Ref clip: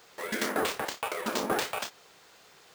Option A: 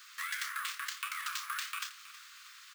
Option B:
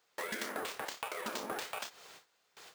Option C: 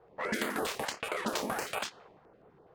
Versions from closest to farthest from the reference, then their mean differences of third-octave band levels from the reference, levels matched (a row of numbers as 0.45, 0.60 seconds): B, C, A; 4.5, 6.5, 16.5 decibels